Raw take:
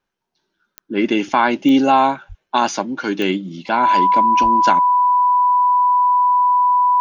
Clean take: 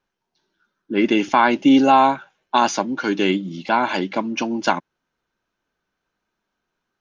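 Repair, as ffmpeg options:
ffmpeg -i in.wav -filter_complex "[0:a]adeclick=threshold=4,bandreject=frequency=990:width=30,asplit=3[link_01][link_02][link_03];[link_01]afade=type=out:start_time=2.28:duration=0.02[link_04];[link_02]highpass=frequency=140:width=0.5412,highpass=frequency=140:width=1.3066,afade=type=in:start_time=2.28:duration=0.02,afade=type=out:start_time=2.4:duration=0.02[link_05];[link_03]afade=type=in:start_time=2.4:duration=0.02[link_06];[link_04][link_05][link_06]amix=inputs=3:normalize=0,asplit=3[link_07][link_08][link_09];[link_07]afade=type=out:start_time=4.42:duration=0.02[link_10];[link_08]highpass=frequency=140:width=0.5412,highpass=frequency=140:width=1.3066,afade=type=in:start_time=4.42:duration=0.02,afade=type=out:start_time=4.54:duration=0.02[link_11];[link_09]afade=type=in:start_time=4.54:duration=0.02[link_12];[link_10][link_11][link_12]amix=inputs=3:normalize=0" out.wav

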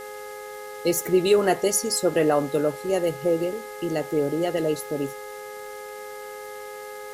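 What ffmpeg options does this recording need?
ffmpeg -i in.wav -af "adeclick=threshold=4,bandreject=frequency=417.8:width_type=h:width=4,bandreject=frequency=835.6:width_type=h:width=4,bandreject=frequency=1253.4:width_type=h:width=4,bandreject=frequency=1671.2:width_type=h:width=4,bandreject=frequency=2089:width_type=h:width=4,bandreject=frequency=520:width=30,afwtdn=0.0045" out.wav

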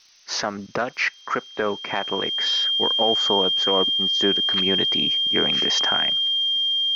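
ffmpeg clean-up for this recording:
ffmpeg -i in.wav -af "adeclick=threshold=4,bandreject=frequency=3200:width=30,afftdn=noise_reduction=26:noise_floor=-43" out.wav

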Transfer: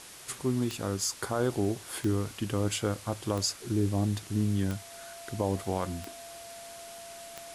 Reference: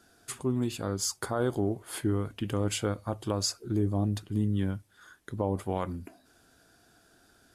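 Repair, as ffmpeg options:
ffmpeg -i in.wav -af "adeclick=threshold=4,bandreject=frequency=680:width=30,afwtdn=0.005" out.wav

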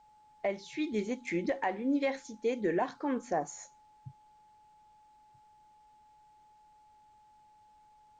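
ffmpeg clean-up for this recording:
ffmpeg -i in.wav -af "bandreject=frequency=850:width=30,agate=range=-21dB:threshold=-54dB" out.wav

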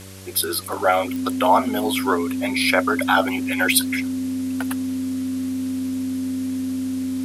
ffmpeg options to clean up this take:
ffmpeg -i in.wav -af "adeclick=threshold=4,bandreject=frequency=95.6:width_type=h:width=4,bandreject=frequency=191.2:width_type=h:width=4,bandreject=frequency=286.8:width_type=h:width=4,bandreject=frequency=382.4:width_type=h:width=4,bandreject=frequency=478:width_type=h:width=4,bandreject=frequency=573.6:width_type=h:width=4,bandreject=frequency=260:width=30,afwtdn=0.0079" out.wav

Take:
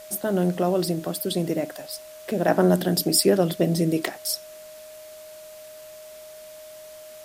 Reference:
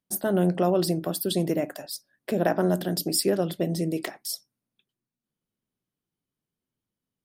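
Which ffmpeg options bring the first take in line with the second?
ffmpeg -i in.wav -af "bandreject=frequency=620:width=30,afwtdn=0.004,asetnsamples=nb_out_samples=441:pad=0,asendcmd='2.48 volume volume -5dB',volume=0dB" out.wav

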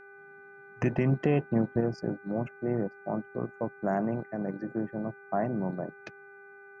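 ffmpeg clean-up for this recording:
ffmpeg -i in.wav -af "bandreject=frequency=398.9:width_type=h:width=4,bandreject=frequency=797.8:width_type=h:width=4,bandreject=frequency=1196.7:width_type=h:width=4,bandreject=frequency=1595.6:width_type=h:width=4,bandreject=frequency=1994.5:width_type=h:width=4,bandreject=frequency=2393.4:width_type=h:width=4,bandreject=frequency=1500:width=30" out.wav

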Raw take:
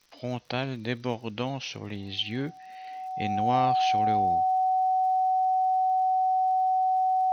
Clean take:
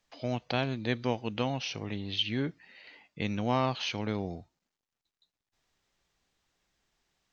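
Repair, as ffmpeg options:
ffmpeg -i in.wav -af "adeclick=threshold=4,bandreject=frequency=750:width=30,agate=range=-21dB:threshold=-35dB,asetnsamples=nb_out_samples=441:pad=0,asendcmd='4.55 volume volume 10dB',volume=0dB" out.wav

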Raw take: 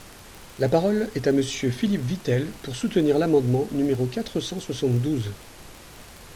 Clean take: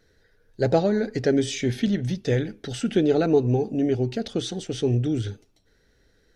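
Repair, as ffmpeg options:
ffmpeg -i in.wav -af "adeclick=threshold=4,afftdn=noise_reduction=18:noise_floor=-45" out.wav

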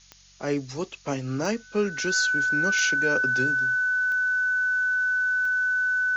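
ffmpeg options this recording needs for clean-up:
ffmpeg -i in.wav -af "adeclick=threshold=4,bandreject=frequency=46.8:width_type=h:width=4,bandreject=frequency=93.6:width_type=h:width=4,bandreject=frequency=140.4:width_type=h:width=4,bandreject=frequency=187.2:width_type=h:width=4,bandreject=frequency=1500:width=30,afftdn=noise_reduction=23:noise_floor=-49" out.wav

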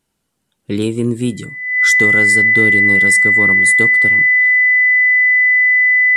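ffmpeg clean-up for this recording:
ffmpeg -i in.wav -af "bandreject=frequency=2000:width=30" out.wav

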